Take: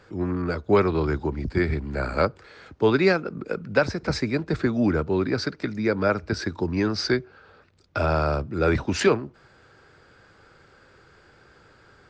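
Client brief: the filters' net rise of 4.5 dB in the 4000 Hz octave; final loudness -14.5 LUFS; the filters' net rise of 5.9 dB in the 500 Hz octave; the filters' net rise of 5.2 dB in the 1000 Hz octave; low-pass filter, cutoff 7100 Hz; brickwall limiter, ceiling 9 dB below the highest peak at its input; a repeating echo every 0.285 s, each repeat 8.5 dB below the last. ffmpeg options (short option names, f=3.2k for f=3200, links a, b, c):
-af "lowpass=7.1k,equalizer=f=500:t=o:g=6.5,equalizer=f=1k:t=o:g=5,equalizer=f=4k:t=o:g=6,alimiter=limit=-11dB:level=0:latency=1,aecho=1:1:285|570|855|1140:0.376|0.143|0.0543|0.0206,volume=8dB"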